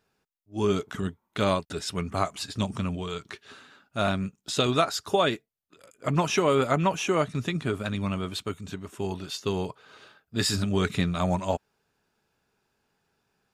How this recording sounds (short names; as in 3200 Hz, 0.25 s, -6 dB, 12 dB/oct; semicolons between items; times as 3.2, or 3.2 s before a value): noise floor -79 dBFS; spectral tilt -5.0 dB/oct